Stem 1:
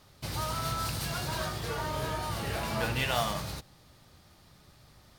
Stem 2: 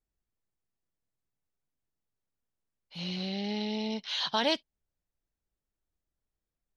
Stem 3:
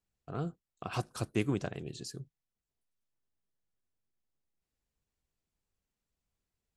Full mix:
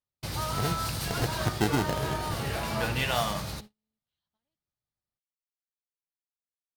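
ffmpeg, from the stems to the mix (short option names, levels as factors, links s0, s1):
-filter_complex "[0:a]volume=1.19[s0];[1:a]bass=f=250:g=11,treble=f=4000:g=-3,acompressor=threshold=0.02:ratio=10,volume=0.2[s1];[2:a]acrusher=samples=38:mix=1:aa=0.000001,acontrast=86,adelay=250,volume=0.75[s2];[s0][s1][s2]amix=inputs=3:normalize=0,agate=range=0.01:threshold=0.00708:ratio=16:detection=peak"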